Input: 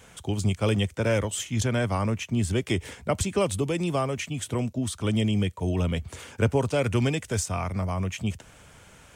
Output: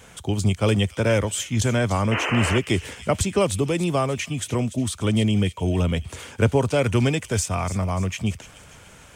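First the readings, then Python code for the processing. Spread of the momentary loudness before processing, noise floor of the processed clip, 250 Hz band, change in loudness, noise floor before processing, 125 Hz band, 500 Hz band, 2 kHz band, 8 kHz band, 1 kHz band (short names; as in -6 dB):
5 LU, -48 dBFS, +4.0 dB, +4.0 dB, -52 dBFS, +4.0 dB, +4.0 dB, +5.5 dB, +4.5 dB, +4.5 dB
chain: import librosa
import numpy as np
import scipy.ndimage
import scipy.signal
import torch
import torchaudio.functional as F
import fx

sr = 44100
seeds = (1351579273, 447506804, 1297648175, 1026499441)

p1 = fx.spec_paint(x, sr, seeds[0], shape='noise', start_s=2.11, length_s=0.48, low_hz=250.0, high_hz=3100.0, level_db=-30.0)
p2 = p1 + fx.echo_wet_highpass(p1, sr, ms=293, feedback_pct=47, hz=2900.0, wet_db=-11.5, dry=0)
y = p2 * 10.0 ** (4.0 / 20.0)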